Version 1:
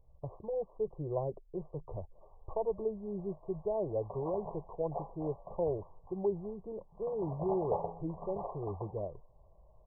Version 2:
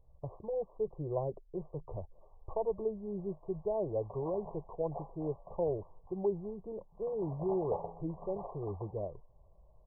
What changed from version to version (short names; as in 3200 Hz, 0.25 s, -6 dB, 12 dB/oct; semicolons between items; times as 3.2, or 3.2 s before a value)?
background -4.0 dB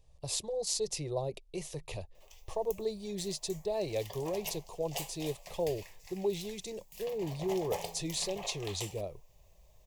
master: remove brick-wall FIR low-pass 1200 Hz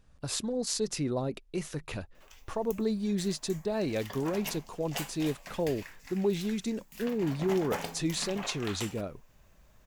master: remove fixed phaser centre 600 Hz, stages 4